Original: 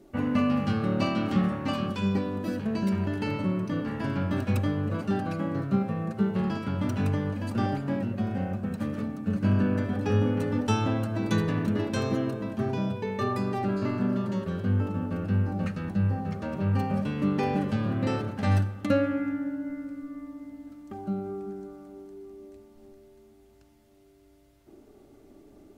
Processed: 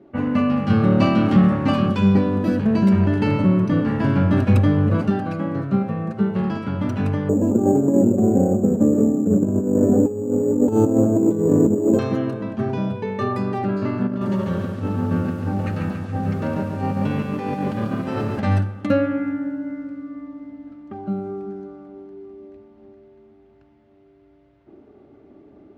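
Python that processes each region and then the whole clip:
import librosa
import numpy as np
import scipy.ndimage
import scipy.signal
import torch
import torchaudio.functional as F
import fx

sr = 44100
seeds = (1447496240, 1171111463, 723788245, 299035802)

y = fx.chain(x, sr, fx.leveller(passes=1),
    fx.low_shelf(hz=200.0, db=5.0), at=(0.7, 5.1))
y = fx.chain(y, sr, fx.curve_eq(hz=(140.0, 400.0, 1900.0), db=(0, 15, -18)),
    fx.over_compress(threshold_db=-21.0, ratio=-0.5),
    fx.resample_bad(factor=6, down='none', up='hold'), at=(7.29, 11.99))
y = fx.chain(y, sr, fx.over_compress(threshold_db=-29.0, ratio=-0.5),
    fx.echo_crushed(ms=141, feedback_pct=55, bits=8, wet_db=-4.0), at=(14.07, 18.4))
y = fx.env_lowpass(y, sr, base_hz=2700.0, full_db=-25.5)
y = scipy.signal.sosfilt(scipy.signal.butter(2, 77.0, 'highpass', fs=sr, output='sos'), y)
y = fx.high_shelf(y, sr, hz=4200.0, db=-10.5)
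y = F.gain(torch.from_numpy(y), 5.5).numpy()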